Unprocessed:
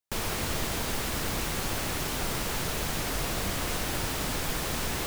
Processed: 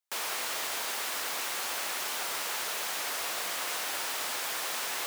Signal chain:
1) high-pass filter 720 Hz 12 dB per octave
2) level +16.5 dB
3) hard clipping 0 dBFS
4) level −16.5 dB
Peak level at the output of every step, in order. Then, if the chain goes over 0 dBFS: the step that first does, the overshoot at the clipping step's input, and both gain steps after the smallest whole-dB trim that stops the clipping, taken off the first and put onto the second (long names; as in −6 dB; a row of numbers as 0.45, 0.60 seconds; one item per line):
−20.5, −4.0, −4.0, −20.5 dBFS
no step passes full scale